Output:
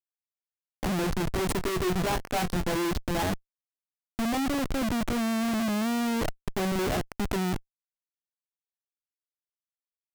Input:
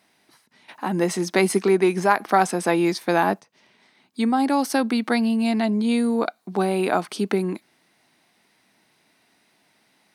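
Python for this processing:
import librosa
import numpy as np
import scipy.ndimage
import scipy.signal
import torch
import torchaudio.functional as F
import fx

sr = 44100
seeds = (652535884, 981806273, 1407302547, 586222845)

y = fx.wiener(x, sr, points=25)
y = fx.schmitt(y, sr, flips_db=-28.5)
y = fx.doubler(y, sr, ms=22.0, db=-9.0, at=(1.57, 2.77))
y = y * 10.0 ** (-3.0 / 20.0)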